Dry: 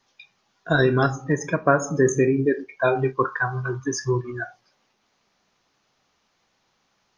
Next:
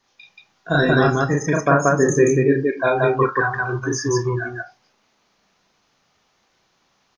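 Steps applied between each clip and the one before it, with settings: loudspeakers at several distances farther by 12 m -1 dB, 62 m 0 dB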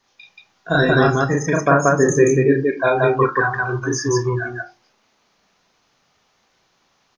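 notches 50/100/150/200/250/300/350 Hz; gain +1.5 dB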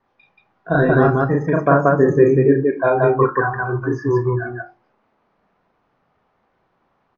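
LPF 1300 Hz 12 dB/oct; gain +1.5 dB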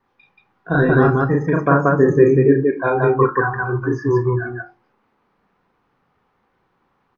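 bell 640 Hz -9.5 dB 0.3 oct; gain +1 dB

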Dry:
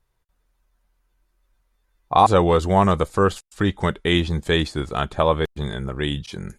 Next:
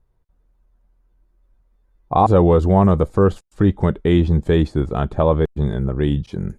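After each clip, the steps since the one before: tilt shelf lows +9.5 dB, about 1100 Hz; in parallel at -3 dB: limiter -6 dBFS, peak gain reduction 8 dB; on the sum: gain -6 dB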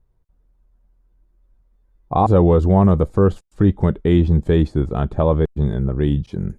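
low shelf 470 Hz +5 dB; gain -3.5 dB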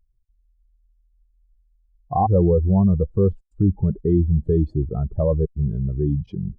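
spectral contrast raised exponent 2; gain -3 dB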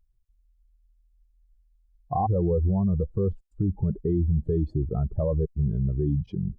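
limiter -14.5 dBFS, peak gain reduction 8 dB; gain -1.5 dB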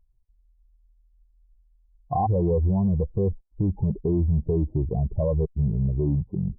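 in parallel at -9 dB: hard clip -26.5 dBFS, distortion -8 dB; on the sum: brick-wall FIR low-pass 1100 Hz

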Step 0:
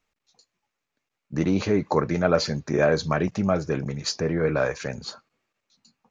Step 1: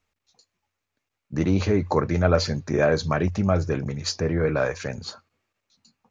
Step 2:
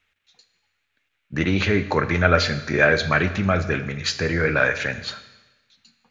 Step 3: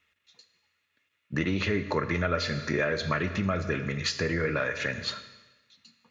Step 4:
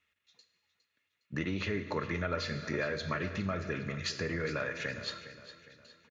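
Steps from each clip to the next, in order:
bell 89 Hz +15 dB 0.25 oct
band shelf 2300 Hz +12 dB; Schroeder reverb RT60 1.1 s, combs from 27 ms, DRR 11 dB
compressor 3:1, threshold -25 dBFS, peak gain reduction 10.5 dB; notch comb 780 Hz
feedback echo 0.41 s, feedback 44%, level -14 dB; gain -6.5 dB

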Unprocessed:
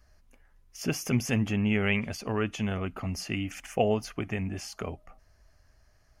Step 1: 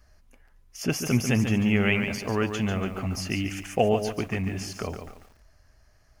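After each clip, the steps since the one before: lo-fi delay 0.143 s, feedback 35%, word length 9-bit, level -7.5 dB; gain +3 dB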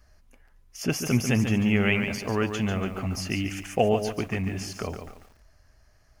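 nothing audible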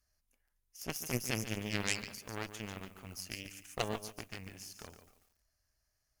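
added harmonics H 3 -10 dB, 4 -17 dB, 5 -27 dB, 7 -42 dB, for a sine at -9 dBFS; pre-emphasis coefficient 0.8; gain +4 dB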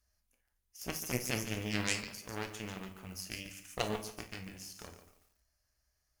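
reverb, pre-delay 8 ms, DRR 6.5 dB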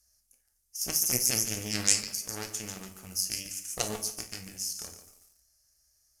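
band shelf 8000 Hz +15.5 dB; notch 1000 Hz, Q 16

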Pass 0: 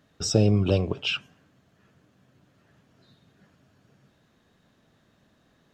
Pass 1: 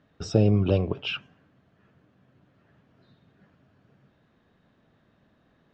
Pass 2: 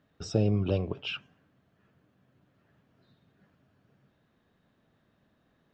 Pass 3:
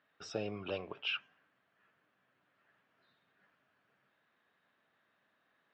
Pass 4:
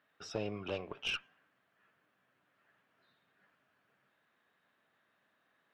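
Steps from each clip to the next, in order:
Bessel low-pass 2600 Hz, order 2
high shelf 6300 Hz +6.5 dB; gain -5.5 dB
band-pass 1800 Hz, Q 0.94; gain +2 dB
tube stage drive 28 dB, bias 0.5; gain +2.5 dB

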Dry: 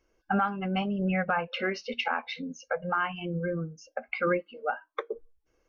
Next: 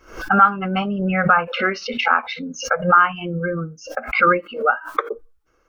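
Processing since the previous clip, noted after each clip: bell 1300 Hz +12.5 dB 0.49 oct; backwards sustainer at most 130 dB/s; gain +6.5 dB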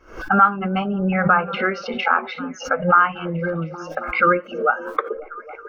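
high shelf 3600 Hz -10 dB; delay with a stepping band-pass 0.272 s, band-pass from 270 Hz, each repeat 0.7 oct, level -9.5 dB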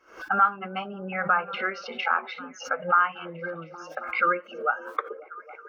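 HPF 700 Hz 6 dB/oct; gain -5 dB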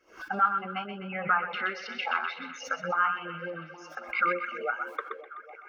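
narrowing echo 0.126 s, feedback 58%, band-pass 2300 Hz, level -5.5 dB; LFO notch sine 3.5 Hz 440–1500 Hz; gain -2 dB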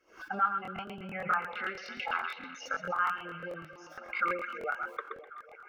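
crackling interface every 0.11 s, samples 1024, repeat, from 0.63; gain -4 dB

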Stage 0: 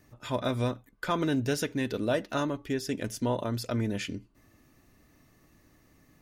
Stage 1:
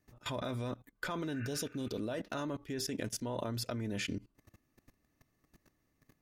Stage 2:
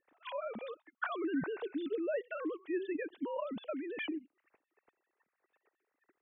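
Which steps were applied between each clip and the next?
spectral repair 1.36–1.95, 1200–2800 Hz both; level quantiser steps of 20 dB; gain +3 dB
sine-wave speech

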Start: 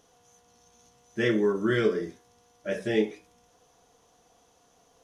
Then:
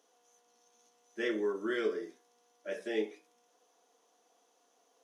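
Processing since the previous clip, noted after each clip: HPF 270 Hz 24 dB/oct; gain -7.5 dB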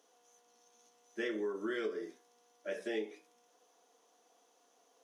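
compressor 4:1, threshold -35 dBFS, peak gain reduction 7.5 dB; gain +1 dB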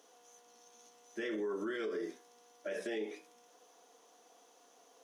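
limiter -36.5 dBFS, peak gain reduction 10 dB; gain +6 dB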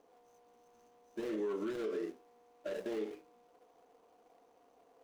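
median filter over 25 samples; gain +1 dB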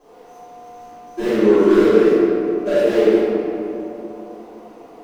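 reverb RT60 2.7 s, pre-delay 3 ms, DRR -20 dB; gain +3.5 dB

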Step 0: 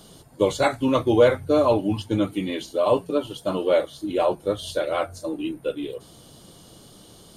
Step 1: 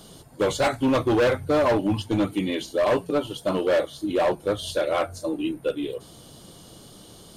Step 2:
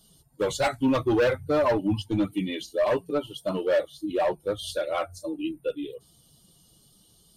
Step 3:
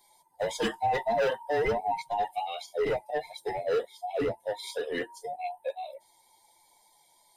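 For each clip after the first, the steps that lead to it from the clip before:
hard clip -18.5 dBFS, distortion -9 dB; gain +1.5 dB
per-bin expansion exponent 1.5
band inversion scrambler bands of 1000 Hz; gain -4.5 dB

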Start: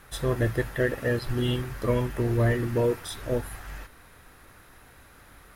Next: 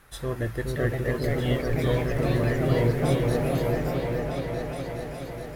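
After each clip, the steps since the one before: echoes that change speed 0.564 s, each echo +2 st, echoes 3; repeats that get brighter 0.419 s, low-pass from 400 Hz, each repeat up 2 oct, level 0 dB; gain -4 dB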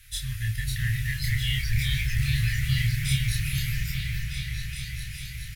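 inverse Chebyshev band-stop 270–860 Hz, stop band 60 dB; doubler 29 ms -2.5 dB; gain +7 dB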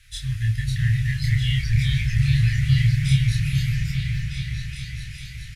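LPF 7900 Hz 12 dB/oct; dynamic EQ 140 Hz, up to +8 dB, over -39 dBFS, Q 0.78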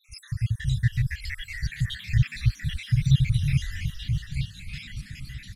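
random spectral dropouts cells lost 68%; frequency-shifting echo 0.272 s, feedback 63%, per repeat -48 Hz, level -13 dB

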